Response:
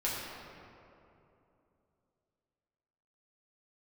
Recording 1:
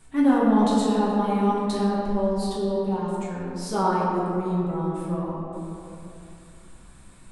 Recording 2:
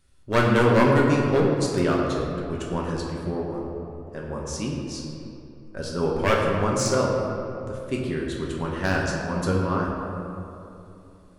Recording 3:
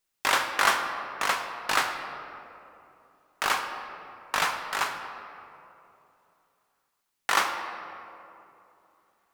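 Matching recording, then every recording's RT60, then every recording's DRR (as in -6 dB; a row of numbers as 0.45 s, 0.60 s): 1; 2.9 s, 2.9 s, 2.9 s; -7.0 dB, -3.0 dB, 4.0 dB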